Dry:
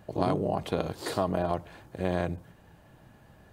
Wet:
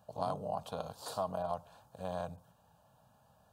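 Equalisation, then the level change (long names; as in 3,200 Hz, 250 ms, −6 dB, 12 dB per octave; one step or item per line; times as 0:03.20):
high-pass filter 110 Hz 6 dB per octave
low-shelf EQ 230 Hz −5.5 dB
phaser with its sweep stopped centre 840 Hz, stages 4
−4.5 dB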